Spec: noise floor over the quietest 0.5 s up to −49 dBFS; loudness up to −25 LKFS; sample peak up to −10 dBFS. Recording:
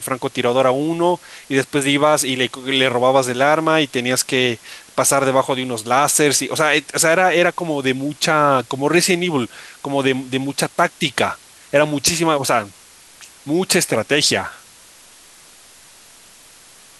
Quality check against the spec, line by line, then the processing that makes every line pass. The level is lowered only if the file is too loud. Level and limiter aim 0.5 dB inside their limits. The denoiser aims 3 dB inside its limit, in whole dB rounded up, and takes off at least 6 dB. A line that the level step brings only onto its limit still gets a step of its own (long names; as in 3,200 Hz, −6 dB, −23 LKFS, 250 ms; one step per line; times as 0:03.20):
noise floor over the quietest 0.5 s −46 dBFS: out of spec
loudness −17.0 LKFS: out of spec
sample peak −2.0 dBFS: out of spec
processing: level −8.5 dB